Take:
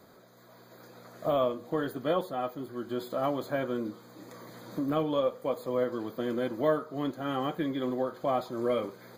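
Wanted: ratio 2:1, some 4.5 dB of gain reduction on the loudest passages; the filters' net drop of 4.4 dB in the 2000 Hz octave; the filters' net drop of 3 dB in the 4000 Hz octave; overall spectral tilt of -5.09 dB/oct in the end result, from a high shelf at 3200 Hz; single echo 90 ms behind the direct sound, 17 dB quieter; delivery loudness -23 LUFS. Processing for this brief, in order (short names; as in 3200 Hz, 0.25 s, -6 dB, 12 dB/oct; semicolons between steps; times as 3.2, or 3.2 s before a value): bell 2000 Hz -6.5 dB; high shelf 3200 Hz +4 dB; bell 4000 Hz -4 dB; compressor 2:1, threshold -31 dBFS; echo 90 ms -17 dB; gain +12 dB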